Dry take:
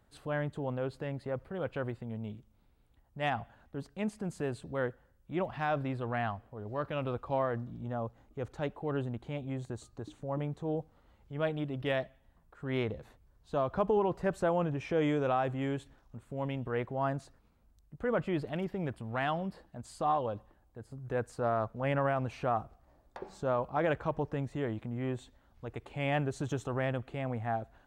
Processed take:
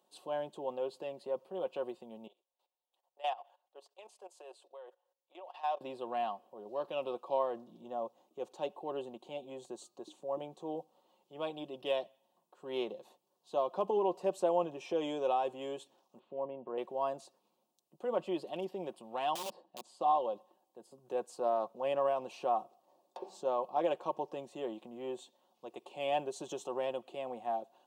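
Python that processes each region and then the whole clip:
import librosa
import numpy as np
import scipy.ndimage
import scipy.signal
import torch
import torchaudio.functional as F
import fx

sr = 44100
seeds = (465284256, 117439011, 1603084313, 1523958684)

y = fx.chain(x, sr, fx.highpass(hz=500.0, slope=24),
    fx.high_shelf(hz=7400.0, db=-5.5),
    fx.level_steps(step_db=16), at=(2.27, 5.81))
y = fx.chain(y, sr, fx.env_lowpass_down(base_hz=1100.0, full_db=-31.5),
    fx.lowpass(hz=3600.0, slope=24), at=(16.19, 16.78))
y = fx.chain(y, sr, fx.lowpass(hz=1900.0, slope=6),
    fx.overflow_wrap(gain_db=33.5), at=(19.35, 20.01))
y = scipy.signal.sosfilt(scipy.signal.bessel(4, 410.0, 'highpass', norm='mag', fs=sr, output='sos'), y)
y = fx.band_shelf(y, sr, hz=1700.0, db=-15.5, octaves=1.0)
y = y + 0.49 * np.pad(y, (int(5.5 * sr / 1000.0), 0))[:len(y)]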